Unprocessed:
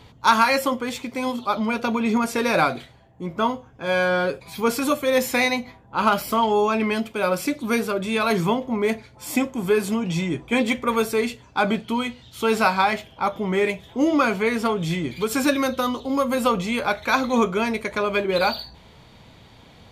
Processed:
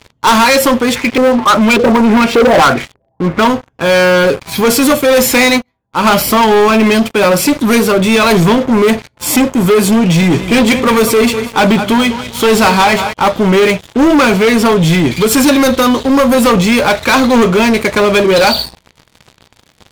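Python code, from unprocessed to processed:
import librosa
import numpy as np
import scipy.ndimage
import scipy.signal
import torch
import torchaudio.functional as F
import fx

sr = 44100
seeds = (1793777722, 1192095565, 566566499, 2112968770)

y = fx.filter_lfo_lowpass(x, sr, shape='saw_up', hz=1.7, low_hz=400.0, high_hz=3500.0, q=3.7, at=(0.94, 3.4), fade=0.02)
y = fx.upward_expand(y, sr, threshold_db=-32.0, expansion=1.5, at=(5.57, 6.04), fade=0.02)
y = fx.echo_feedback(y, sr, ms=199, feedback_pct=46, wet_db=-15.0, at=(10.2, 13.12), fade=0.02)
y = fx.notch(y, sr, hz=720.0, q=15.0)
y = fx.dynamic_eq(y, sr, hz=1400.0, q=1.1, threshold_db=-31.0, ratio=4.0, max_db=-3)
y = fx.leveller(y, sr, passes=5)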